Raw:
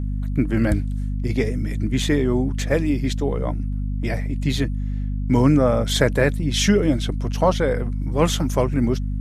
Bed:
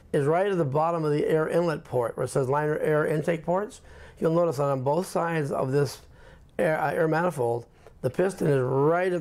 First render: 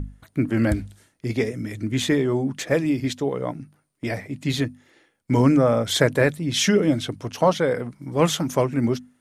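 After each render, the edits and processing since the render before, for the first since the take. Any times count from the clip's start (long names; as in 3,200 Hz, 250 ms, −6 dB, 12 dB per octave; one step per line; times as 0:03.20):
mains-hum notches 50/100/150/200/250 Hz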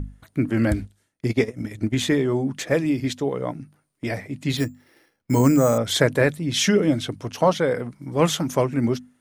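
0:00.82–0:01.95: transient designer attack +5 dB, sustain −12 dB
0:04.57–0:05.78: bad sample-rate conversion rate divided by 6×, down filtered, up hold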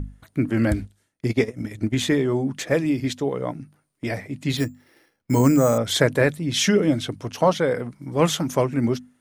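no processing that can be heard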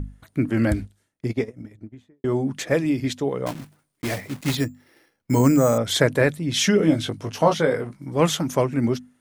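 0:00.80–0:02.24: fade out and dull
0:03.46–0:04.57: one scale factor per block 3 bits
0:06.78–0:07.97: double-tracking delay 19 ms −5 dB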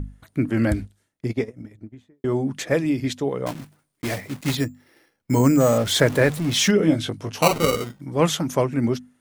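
0:05.60–0:06.71: converter with a step at zero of −28 dBFS
0:07.42–0:08.01: sample-rate reduction 1,700 Hz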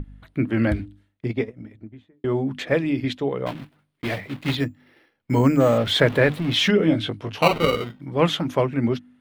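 high shelf with overshoot 4,700 Hz −11 dB, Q 1.5
mains-hum notches 50/100/150/200/250/300 Hz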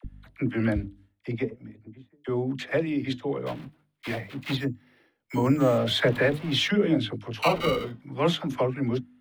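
all-pass dispersion lows, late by 47 ms, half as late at 670 Hz
flanger 0.43 Hz, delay 0 ms, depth 6.1 ms, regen −89%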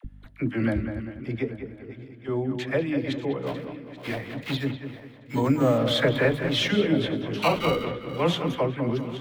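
feedback delay that plays each chunk backwards 417 ms, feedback 57%, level −14 dB
delay with a low-pass on its return 199 ms, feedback 36%, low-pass 2,900 Hz, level −8.5 dB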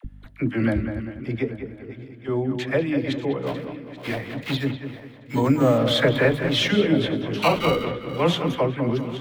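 level +3 dB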